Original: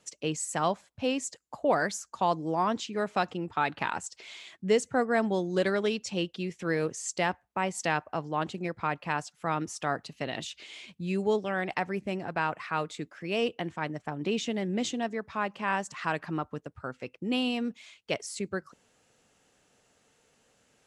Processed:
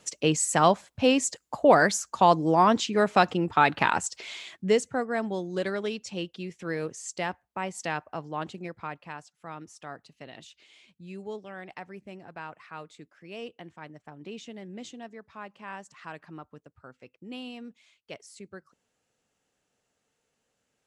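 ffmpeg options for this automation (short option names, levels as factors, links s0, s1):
-af "volume=2.37,afade=t=out:st=4.1:d=0.92:silence=0.298538,afade=t=out:st=8.48:d=0.72:silence=0.398107"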